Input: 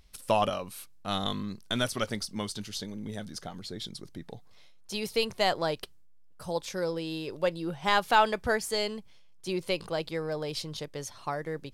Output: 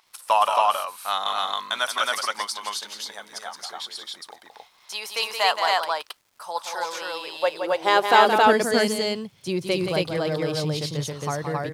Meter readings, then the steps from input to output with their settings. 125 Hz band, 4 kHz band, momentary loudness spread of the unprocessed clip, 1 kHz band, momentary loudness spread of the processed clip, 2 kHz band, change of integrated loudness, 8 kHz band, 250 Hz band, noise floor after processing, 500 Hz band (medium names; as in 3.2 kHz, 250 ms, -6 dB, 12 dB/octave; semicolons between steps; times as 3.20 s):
+6.0 dB, +7.5 dB, 14 LU, +9.5 dB, 17 LU, +8.0 dB, +7.5 dB, +7.0 dB, +4.5 dB, -58 dBFS, +6.5 dB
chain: high-pass sweep 970 Hz -> 110 Hz, 7.21–9.10 s; crackle 240 per s -55 dBFS; loudspeakers at several distances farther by 59 m -7 dB, 93 m -1 dB; trim +4 dB